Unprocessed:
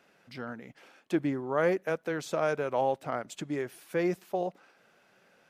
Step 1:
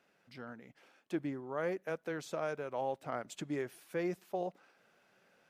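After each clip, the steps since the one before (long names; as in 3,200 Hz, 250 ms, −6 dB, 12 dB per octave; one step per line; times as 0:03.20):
speech leveller within 3 dB 0.5 s
level −7 dB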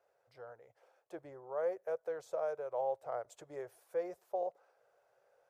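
drawn EQ curve 110 Hz 0 dB, 230 Hz −23 dB, 490 Hz +10 dB, 720 Hz +8 dB, 2,700 Hz −9 dB, 7,400 Hz −1 dB
level −7 dB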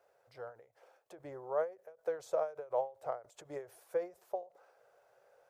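every ending faded ahead of time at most 190 dB per second
level +5 dB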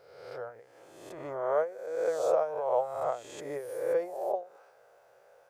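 peak hold with a rise ahead of every peak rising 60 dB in 1.08 s
level +4 dB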